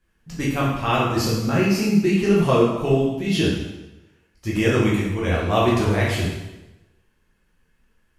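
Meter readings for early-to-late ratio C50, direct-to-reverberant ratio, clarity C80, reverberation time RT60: 1.5 dB, -6.5 dB, 4.0 dB, 1.0 s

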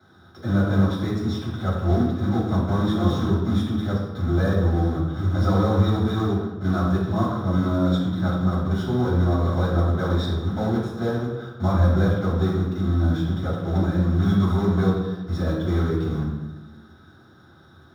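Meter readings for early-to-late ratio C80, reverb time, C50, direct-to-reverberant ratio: 4.5 dB, 1.1 s, 1.5 dB, -11.5 dB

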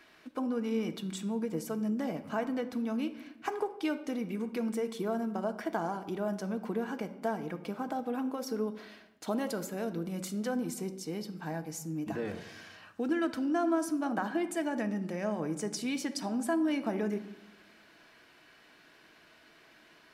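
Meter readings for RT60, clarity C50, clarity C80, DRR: 0.95 s, 13.0 dB, 15.5 dB, 7.0 dB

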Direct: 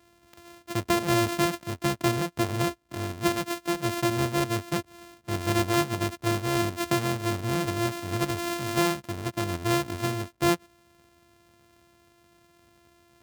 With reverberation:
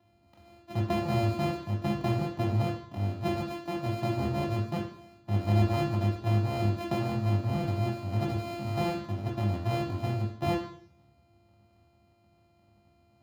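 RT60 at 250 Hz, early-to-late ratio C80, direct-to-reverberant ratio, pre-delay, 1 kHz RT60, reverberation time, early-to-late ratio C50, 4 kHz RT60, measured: 0.60 s, 11.0 dB, 2.0 dB, 3 ms, 0.55 s, 0.60 s, 7.0 dB, 0.70 s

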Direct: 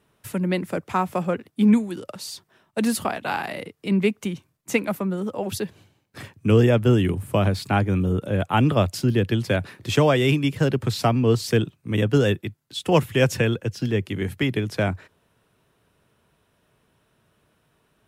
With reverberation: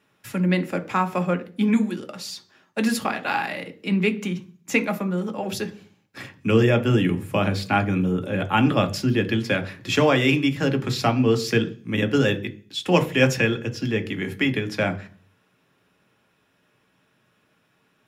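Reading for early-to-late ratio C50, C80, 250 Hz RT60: 17.0 dB, 21.5 dB, 0.55 s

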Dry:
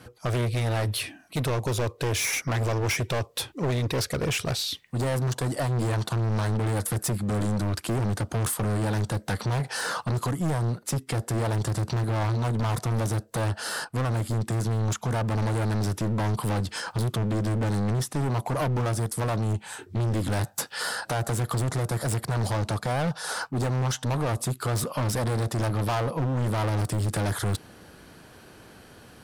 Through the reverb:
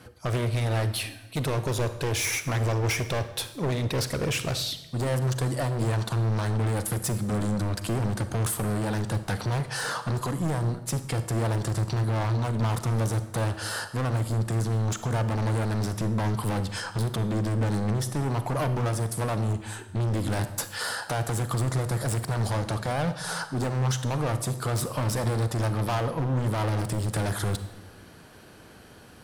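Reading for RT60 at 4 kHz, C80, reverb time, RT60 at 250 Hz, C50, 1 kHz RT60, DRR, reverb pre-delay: 0.80 s, 13.5 dB, 1.0 s, 1.2 s, 11.5 dB, 0.90 s, 10.5 dB, 35 ms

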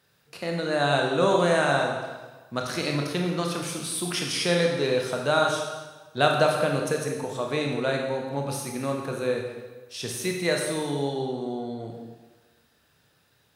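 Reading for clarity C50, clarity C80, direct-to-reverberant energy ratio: 3.0 dB, 5.0 dB, 0.5 dB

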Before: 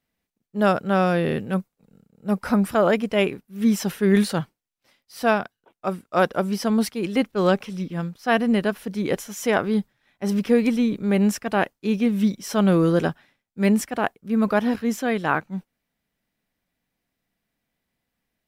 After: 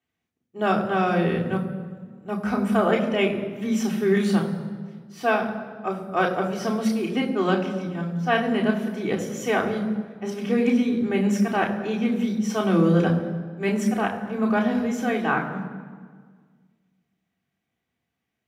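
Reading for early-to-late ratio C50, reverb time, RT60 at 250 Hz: 8.5 dB, 1.6 s, 2.0 s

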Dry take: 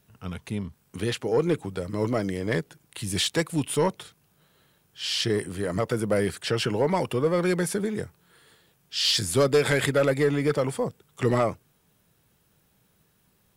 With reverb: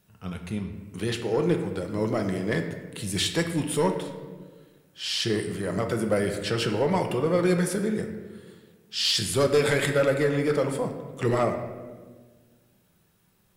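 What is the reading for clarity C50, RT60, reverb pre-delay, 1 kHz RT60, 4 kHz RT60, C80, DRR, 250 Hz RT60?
7.0 dB, 1.5 s, 5 ms, 1.2 s, 0.85 s, 9.0 dB, 4.0 dB, 2.1 s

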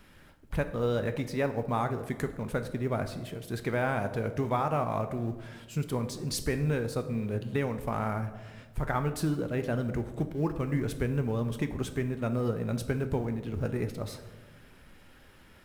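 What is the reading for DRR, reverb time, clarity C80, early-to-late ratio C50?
8.0 dB, 1.4 s, 13.5 dB, 11.5 dB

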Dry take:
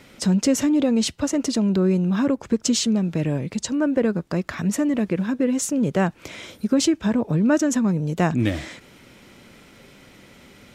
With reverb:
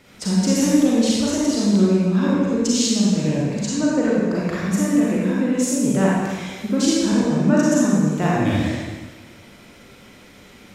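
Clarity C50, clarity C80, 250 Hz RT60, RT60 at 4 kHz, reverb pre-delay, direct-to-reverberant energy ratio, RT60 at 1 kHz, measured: -3.5 dB, -1.0 dB, 1.4 s, 1.4 s, 33 ms, -6.5 dB, 1.4 s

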